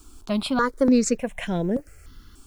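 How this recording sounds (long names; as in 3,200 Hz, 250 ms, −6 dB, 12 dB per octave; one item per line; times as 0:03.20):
a quantiser's noise floor 10 bits, dither none
notches that jump at a steady rate 3.4 Hz 540–4,300 Hz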